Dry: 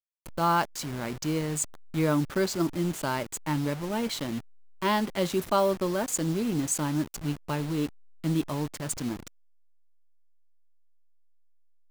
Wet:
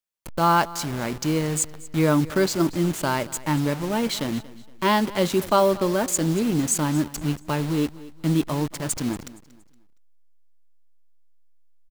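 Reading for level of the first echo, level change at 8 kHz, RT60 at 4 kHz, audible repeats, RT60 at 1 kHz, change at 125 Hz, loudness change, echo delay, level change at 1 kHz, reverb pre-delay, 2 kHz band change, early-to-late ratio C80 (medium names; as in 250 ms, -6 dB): -19.0 dB, +5.5 dB, no reverb, 2, no reverb, +5.5 dB, +5.5 dB, 233 ms, +5.5 dB, no reverb, +5.5 dB, no reverb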